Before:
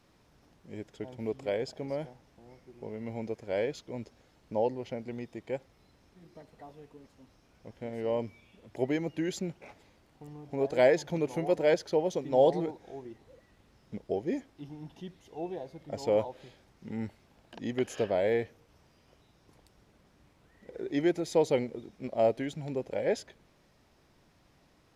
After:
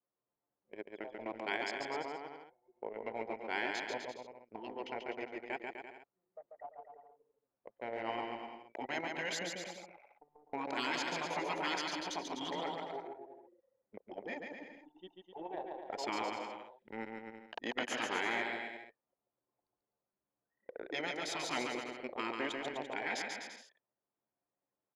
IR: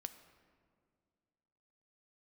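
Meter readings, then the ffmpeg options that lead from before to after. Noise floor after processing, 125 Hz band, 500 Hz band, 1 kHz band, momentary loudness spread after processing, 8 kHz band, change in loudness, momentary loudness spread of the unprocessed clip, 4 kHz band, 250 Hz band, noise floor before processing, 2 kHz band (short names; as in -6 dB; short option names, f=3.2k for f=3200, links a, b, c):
under -85 dBFS, -17.0 dB, -13.0 dB, -0.5 dB, 18 LU, +0.5 dB, -8.0 dB, 19 LU, +4.5 dB, -10.0 dB, -65 dBFS, +3.5 dB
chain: -af "highpass=730,afftfilt=real='re*lt(hypot(re,im),0.0398)':imag='im*lt(hypot(re,im),0.0398)':win_size=1024:overlap=0.75,anlmdn=0.01,aemphasis=mode=reproduction:type=75kf,aecho=1:1:140|252|341.6|413.3|470.6:0.631|0.398|0.251|0.158|0.1,volume=9.5dB"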